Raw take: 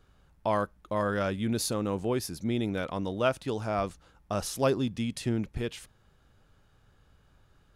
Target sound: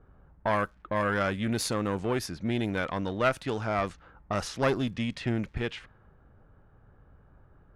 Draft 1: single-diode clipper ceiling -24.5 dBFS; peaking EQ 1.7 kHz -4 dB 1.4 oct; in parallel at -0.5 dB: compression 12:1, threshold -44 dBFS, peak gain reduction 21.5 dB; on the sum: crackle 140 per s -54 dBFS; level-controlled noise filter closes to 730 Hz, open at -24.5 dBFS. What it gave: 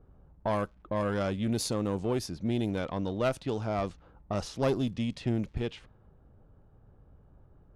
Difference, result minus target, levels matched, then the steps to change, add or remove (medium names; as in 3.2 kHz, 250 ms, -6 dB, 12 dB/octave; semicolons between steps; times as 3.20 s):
2 kHz band -7.5 dB
change: peaking EQ 1.7 kHz +7 dB 1.4 oct